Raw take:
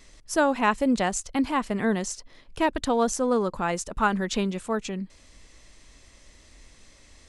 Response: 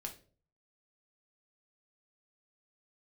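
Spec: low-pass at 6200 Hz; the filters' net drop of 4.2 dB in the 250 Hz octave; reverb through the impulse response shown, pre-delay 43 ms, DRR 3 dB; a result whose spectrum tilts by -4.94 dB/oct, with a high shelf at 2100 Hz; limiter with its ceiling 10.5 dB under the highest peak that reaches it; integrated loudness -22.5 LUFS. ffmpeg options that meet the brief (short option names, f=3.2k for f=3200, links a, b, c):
-filter_complex "[0:a]lowpass=6.2k,equalizer=f=250:t=o:g=-5,highshelf=f=2.1k:g=-3,alimiter=limit=-20.5dB:level=0:latency=1,asplit=2[a][b];[1:a]atrim=start_sample=2205,adelay=43[c];[b][c]afir=irnorm=-1:irlink=0,volume=-0.5dB[d];[a][d]amix=inputs=2:normalize=0,volume=7dB"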